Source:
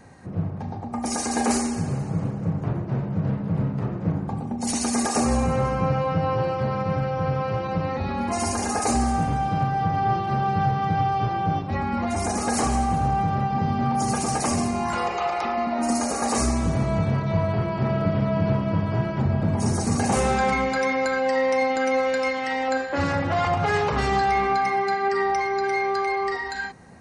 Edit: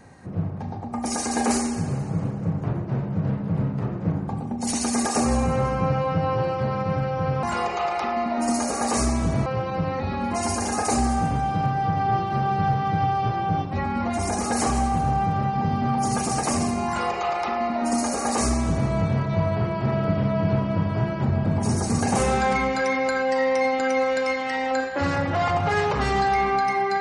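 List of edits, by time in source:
14.84–16.87 copy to 7.43

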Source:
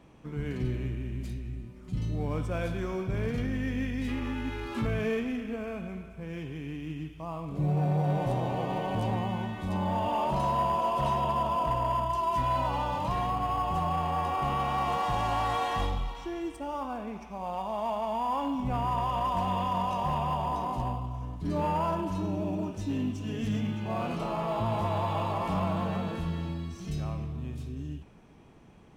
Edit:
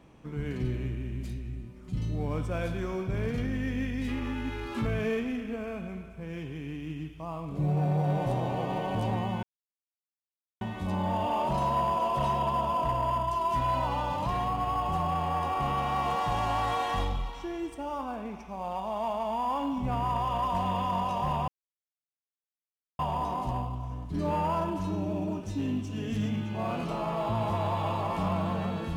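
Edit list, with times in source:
9.43 insert silence 1.18 s
20.3 insert silence 1.51 s

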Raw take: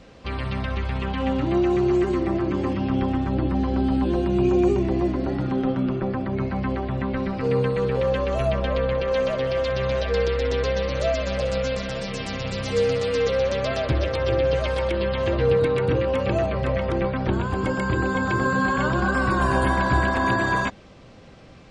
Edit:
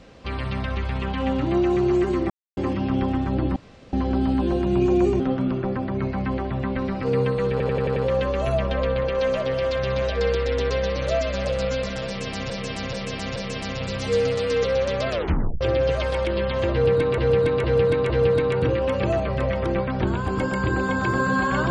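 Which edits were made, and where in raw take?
2.3–2.57 mute
3.56 insert room tone 0.37 s
4.83–5.58 cut
7.89 stutter 0.09 s, 6 plays
12–12.43 loop, 4 plays
13.74 tape stop 0.51 s
15.36–15.82 loop, 4 plays

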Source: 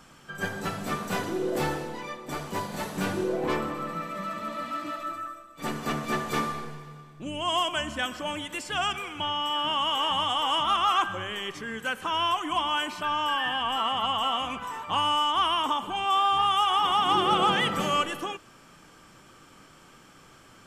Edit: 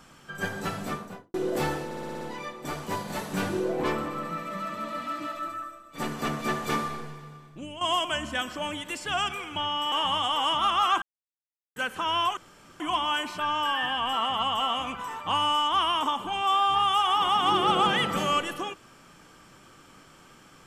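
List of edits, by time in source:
0.77–1.34 studio fade out
1.85 stutter 0.06 s, 7 plays
7.1–7.45 fade out, to -10.5 dB
9.56–9.98 cut
11.08–11.82 mute
12.43 insert room tone 0.43 s

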